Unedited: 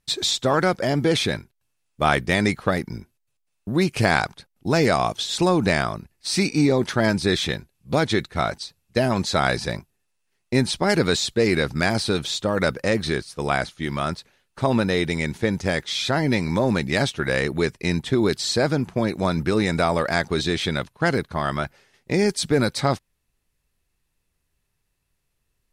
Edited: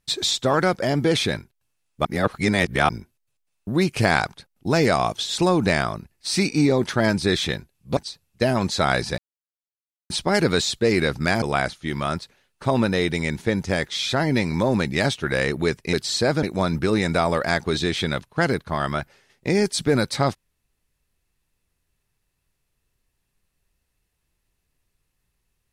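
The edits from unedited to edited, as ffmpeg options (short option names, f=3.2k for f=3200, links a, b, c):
-filter_complex "[0:a]asplit=9[a][b][c][d][e][f][g][h][i];[a]atrim=end=2.052[j];[b]atrim=start=2.048:end=2.892,asetpts=PTS-STARTPTS,areverse[k];[c]atrim=start=2.888:end=7.972[l];[d]atrim=start=8.518:end=9.73,asetpts=PTS-STARTPTS,afade=t=out:st=1.208:d=0.004:c=hsin[m];[e]atrim=start=9.73:end=10.65,asetpts=PTS-STARTPTS,volume=0[n];[f]atrim=start=10.65:end=11.972,asetpts=PTS-STARTPTS,afade=t=in:d=0.004:c=hsin[o];[g]atrim=start=13.378:end=17.892[p];[h]atrim=start=18.278:end=18.782[q];[i]atrim=start=19.068[r];[j][k]acrossfade=d=0.004:c1=hsin:c2=hsin[s];[s][l]acrossfade=d=0.004:c1=hsin:c2=hsin[t];[m][n][o]concat=n=3:v=0:a=1[u];[t][u]acrossfade=d=0.004:c1=hsin:c2=hsin[v];[v][p]acrossfade=d=0.004:c1=hsin:c2=hsin[w];[w][q]acrossfade=d=0.004:c1=hsin:c2=hsin[x];[x][r]acrossfade=d=0.004:c1=hsin:c2=hsin"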